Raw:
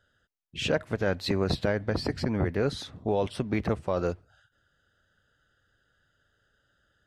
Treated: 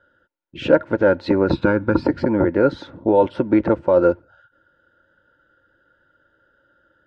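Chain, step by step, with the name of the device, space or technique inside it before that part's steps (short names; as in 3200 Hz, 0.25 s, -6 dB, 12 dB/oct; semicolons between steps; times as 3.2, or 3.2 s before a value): 1.51–2.04 comb 0.8 ms, depth 66%; inside a cardboard box (LPF 3600 Hz 12 dB/oct; small resonant body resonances 330/530/900/1400 Hz, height 17 dB, ringing for 35 ms)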